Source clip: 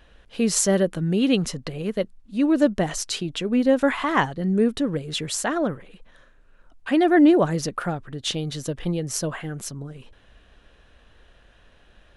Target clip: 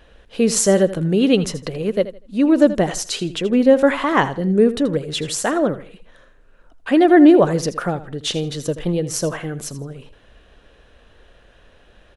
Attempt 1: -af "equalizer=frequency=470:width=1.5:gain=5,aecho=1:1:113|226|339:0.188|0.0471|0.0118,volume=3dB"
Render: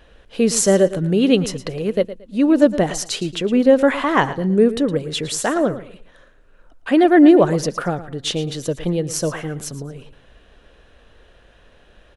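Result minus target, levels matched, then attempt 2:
echo 32 ms late
-af "equalizer=frequency=470:width=1.5:gain=5,aecho=1:1:81|162|243:0.188|0.0471|0.0118,volume=3dB"

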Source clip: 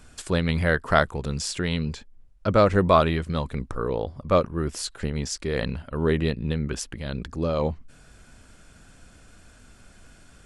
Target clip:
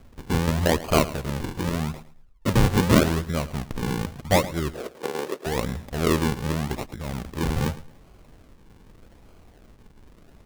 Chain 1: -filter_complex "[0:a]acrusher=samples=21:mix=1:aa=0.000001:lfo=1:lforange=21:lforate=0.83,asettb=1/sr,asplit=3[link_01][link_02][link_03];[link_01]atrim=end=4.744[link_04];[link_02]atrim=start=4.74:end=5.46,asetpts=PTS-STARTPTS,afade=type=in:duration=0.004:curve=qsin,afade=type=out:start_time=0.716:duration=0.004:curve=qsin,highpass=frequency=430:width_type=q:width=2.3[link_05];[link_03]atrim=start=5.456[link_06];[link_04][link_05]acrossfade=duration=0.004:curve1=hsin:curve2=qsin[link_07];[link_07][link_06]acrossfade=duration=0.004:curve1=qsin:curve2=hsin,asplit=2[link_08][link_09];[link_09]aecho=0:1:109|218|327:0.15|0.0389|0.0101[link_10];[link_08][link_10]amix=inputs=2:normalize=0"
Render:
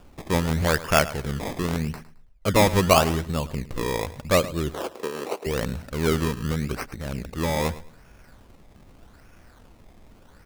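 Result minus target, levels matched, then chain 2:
sample-and-hold swept by an LFO: distortion −8 dB
-filter_complex "[0:a]acrusher=samples=47:mix=1:aa=0.000001:lfo=1:lforange=47:lforate=0.83,asettb=1/sr,asplit=3[link_01][link_02][link_03];[link_01]atrim=end=4.744[link_04];[link_02]atrim=start=4.74:end=5.46,asetpts=PTS-STARTPTS,afade=type=in:duration=0.004:curve=qsin,afade=type=out:start_time=0.716:duration=0.004:curve=qsin,highpass=frequency=430:width_type=q:width=2.3[link_05];[link_03]atrim=start=5.456[link_06];[link_04][link_05]acrossfade=duration=0.004:curve1=hsin:curve2=qsin[link_07];[link_07][link_06]acrossfade=duration=0.004:curve1=qsin:curve2=hsin,asplit=2[link_08][link_09];[link_09]aecho=0:1:109|218|327:0.15|0.0389|0.0101[link_10];[link_08][link_10]amix=inputs=2:normalize=0"

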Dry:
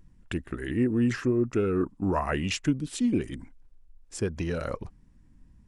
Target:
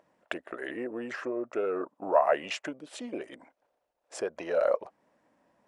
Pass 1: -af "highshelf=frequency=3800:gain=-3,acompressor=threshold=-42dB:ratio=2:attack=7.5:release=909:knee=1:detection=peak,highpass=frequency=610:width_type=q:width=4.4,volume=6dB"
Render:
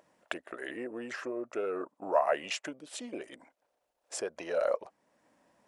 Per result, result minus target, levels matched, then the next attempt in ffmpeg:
8,000 Hz band +7.5 dB; downward compressor: peak gain reduction +4 dB
-af "highshelf=frequency=3800:gain=-13,acompressor=threshold=-42dB:ratio=2:attack=7.5:release=909:knee=1:detection=peak,highpass=frequency=610:width_type=q:width=4.4,volume=6dB"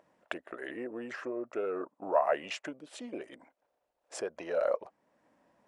downward compressor: peak gain reduction +4 dB
-af "highshelf=frequency=3800:gain=-13,acompressor=threshold=-34.5dB:ratio=2:attack=7.5:release=909:knee=1:detection=peak,highpass=frequency=610:width_type=q:width=4.4,volume=6dB"

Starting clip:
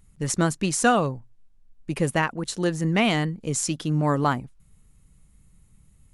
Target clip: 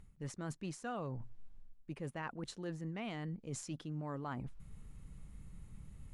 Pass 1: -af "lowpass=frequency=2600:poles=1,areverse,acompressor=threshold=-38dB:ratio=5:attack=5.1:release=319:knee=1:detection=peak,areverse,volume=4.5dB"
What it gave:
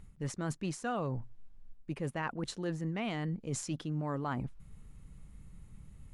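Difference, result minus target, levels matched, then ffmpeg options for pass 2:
downward compressor: peak gain reduction −6.5 dB
-af "lowpass=frequency=2600:poles=1,areverse,acompressor=threshold=-46dB:ratio=5:attack=5.1:release=319:knee=1:detection=peak,areverse,volume=4.5dB"

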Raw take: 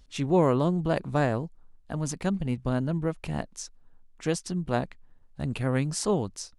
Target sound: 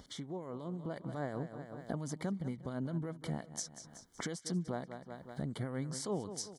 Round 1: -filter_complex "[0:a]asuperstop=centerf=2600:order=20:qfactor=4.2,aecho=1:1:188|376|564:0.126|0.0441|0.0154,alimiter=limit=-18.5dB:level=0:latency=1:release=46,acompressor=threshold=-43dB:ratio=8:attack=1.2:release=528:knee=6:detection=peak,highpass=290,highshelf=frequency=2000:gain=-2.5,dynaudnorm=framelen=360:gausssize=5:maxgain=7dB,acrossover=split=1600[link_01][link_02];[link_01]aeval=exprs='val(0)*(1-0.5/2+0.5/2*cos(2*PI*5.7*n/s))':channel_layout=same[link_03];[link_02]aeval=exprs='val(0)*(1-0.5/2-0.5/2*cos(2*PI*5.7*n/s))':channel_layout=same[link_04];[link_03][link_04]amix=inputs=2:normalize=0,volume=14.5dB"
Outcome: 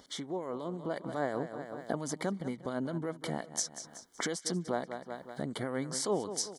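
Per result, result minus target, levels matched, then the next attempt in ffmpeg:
downward compressor: peak gain reduction −7.5 dB; 125 Hz band −6.5 dB
-filter_complex "[0:a]asuperstop=centerf=2600:order=20:qfactor=4.2,aecho=1:1:188|376|564:0.126|0.0441|0.0154,alimiter=limit=-18.5dB:level=0:latency=1:release=46,acompressor=threshold=-51.5dB:ratio=8:attack=1.2:release=528:knee=6:detection=peak,highpass=290,highshelf=frequency=2000:gain=-2.5,dynaudnorm=framelen=360:gausssize=5:maxgain=7dB,acrossover=split=1600[link_01][link_02];[link_01]aeval=exprs='val(0)*(1-0.5/2+0.5/2*cos(2*PI*5.7*n/s))':channel_layout=same[link_03];[link_02]aeval=exprs='val(0)*(1-0.5/2-0.5/2*cos(2*PI*5.7*n/s))':channel_layout=same[link_04];[link_03][link_04]amix=inputs=2:normalize=0,volume=14.5dB"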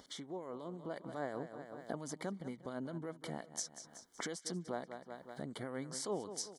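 125 Hz band −6.5 dB
-filter_complex "[0:a]asuperstop=centerf=2600:order=20:qfactor=4.2,aecho=1:1:188|376|564:0.126|0.0441|0.0154,alimiter=limit=-18.5dB:level=0:latency=1:release=46,acompressor=threshold=-51.5dB:ratio=8:attack=1.2:release=528:knee=6:detection=peak,highpass=130,highshelf=frequency=2000:gain=-2.5,dynaudnorm=framelen=360:gausssize=5:maxgain=7dB,acrossover=split=1600[link_01][link_02];[link_01]aeval=exprs='val(0)*(1-0.5/2+0.5/2*cos(2*PI*5.7*n/s))':channel_layout=same[link_03];[link_02]aeval=exprs='val(0)*(1-0.5/2-0.5/2*cos(2*PI*5.7*n/s))':channel_layout=same[link_04];[link_03][link_04]amix=inputs=2:normalize=0,volume=14.5dB"

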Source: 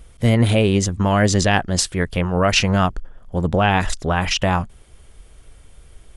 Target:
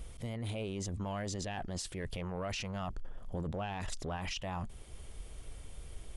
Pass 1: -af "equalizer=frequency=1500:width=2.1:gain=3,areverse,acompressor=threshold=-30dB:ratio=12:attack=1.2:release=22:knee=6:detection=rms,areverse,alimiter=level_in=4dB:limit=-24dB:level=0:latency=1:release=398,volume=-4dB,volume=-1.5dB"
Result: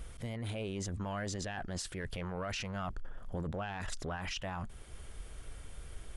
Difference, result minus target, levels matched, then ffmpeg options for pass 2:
2,000 Hz band +3.0 dB
-af "equalizer=frequency=1500:width=2.1:gain=-4.5,areverse,acompressor=threshold=-30dB:ratio=12:attack=1.2:release=22:knee=6:detection=rms,areverse,alimiter=level_in=4dB:limit=-24dB:level=0:latency=1:release=398,volume=-4dB,volume=-1.5dB"

